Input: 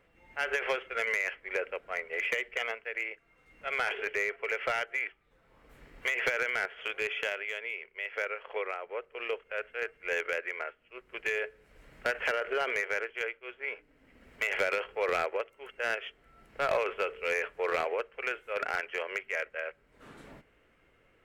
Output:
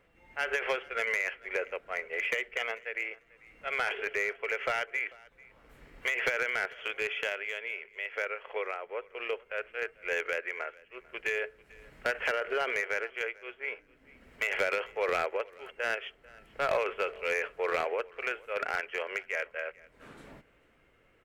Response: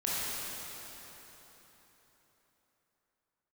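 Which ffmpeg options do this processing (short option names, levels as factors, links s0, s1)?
-af "aecho=1:1:443|886:0.0668|0.012"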